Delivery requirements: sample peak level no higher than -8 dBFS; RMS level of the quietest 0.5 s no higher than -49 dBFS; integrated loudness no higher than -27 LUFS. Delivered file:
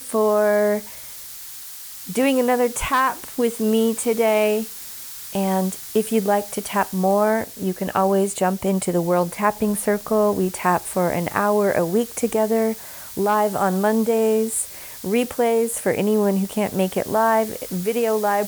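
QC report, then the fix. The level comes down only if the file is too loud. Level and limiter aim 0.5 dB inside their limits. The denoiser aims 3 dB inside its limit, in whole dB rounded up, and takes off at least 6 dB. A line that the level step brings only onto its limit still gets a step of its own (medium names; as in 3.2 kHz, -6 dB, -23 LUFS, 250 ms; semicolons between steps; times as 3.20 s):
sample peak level -4.5 dBFS: fail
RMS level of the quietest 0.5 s -37 dBFS: fail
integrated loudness -21.0 LUFS: fail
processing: noise reduction 9 dB, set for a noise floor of -37 dBFS; trim -6.5 dB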